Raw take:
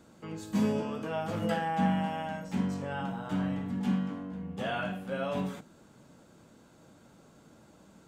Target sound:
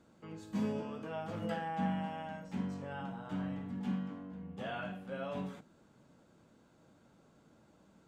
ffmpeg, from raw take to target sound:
-af "highshelf=f=7.2k:g=-9,volume=-7dB"

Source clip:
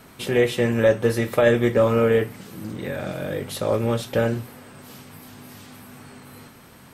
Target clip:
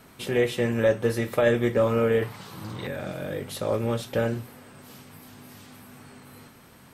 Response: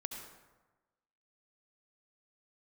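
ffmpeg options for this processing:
-filter_complex "[0:a]asettb=1/sr,asplit=3[a][b][c];[a]atrim=end=2.224[d];[b]atrim=start=2.22:end=2.87,asetpts=PTS-STARTPTS,afade=t=in:d=0.004:c=qsin,afade=t=out:st=0.646:d=0.004:c=qsin,equalizer=f=125:t=o:w=1:g=5,equalizer=f=250:t=o:w=1:g=-6,equalizer=f=1k:t=o:w=1:g=11,equalizer=f=4k:t=o:w=1:g=8[e];[c]atrim=start=2.866[f];[d][e]acrossfade=d=0.004:c1=hsin:c2=qsin[g];[g][f]acrossfade=d=0.004:c1=qsin:c2=hsin,volume=-4dB"

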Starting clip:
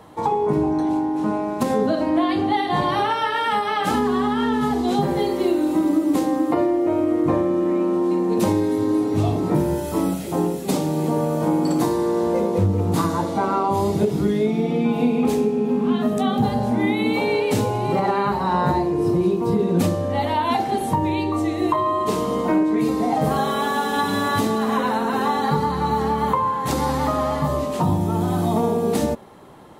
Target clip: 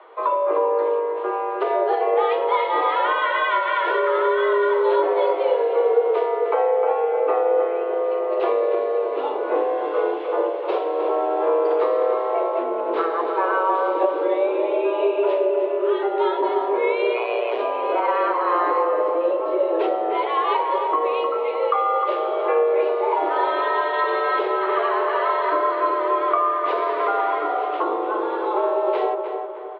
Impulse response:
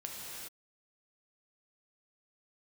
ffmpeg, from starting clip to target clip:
-filter_complex "[0:a]asplit=3[a][b][c];[a]afade=t=out:st=17.13:d=0.02[d];[b]tremolo=f=120:d=0.889,afade=t=in:st=17.13:d=0.02,afade=t=out:st=17.58:d=0.02[e];[c]afade=t=in:st=17.58:d=0.02[f];[d][e][f]amix=inputs=3:normalize=0,highpass=f=220:t=q:w=0.5412,highpass=f=220:t=q:w=1.307,lowpass=f=3.1k:t=q:w=0.5176,lowpass=f=3.1k:t=q:w=0.7071,lowpass=f=3.1k:t=q:w=1.932,afreqshift=160,asplit=2[g][h];[h]adelay=307,lowpass=f=1.9k:p=1,volume=-5.5dB,asplit=2[i][j];[j]adelay=307,lowpass=f=1.9k:p=1,volume=0.49,asplit=2[k][l];[l]adelay=307,lowpass=f=1.9k:p=1,volume=0.49,asplit=2[m][n];[n]adelay=307,lowpass=f=1.9k:p=1,volume=0.49,asplit=2[o][p];[p]adelay=307,lowpass=f=1.9k:p=1,volume=0.49,asplit=2[q][r];[r]adelay=307,lowpass=f=1.9k:p=1,volume=0.49[s];[g][i][k][m][o][q][s]amix=inputs=7:normalize=0"

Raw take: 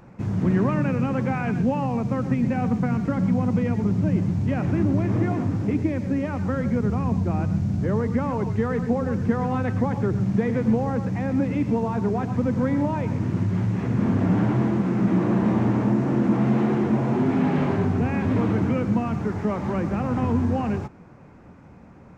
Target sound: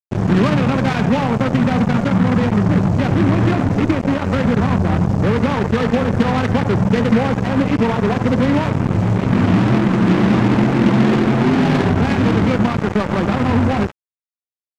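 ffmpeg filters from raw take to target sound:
-af "acrusher=bits=3:mix=0:aa=0.5,atempo=1.5,volume=7dB"

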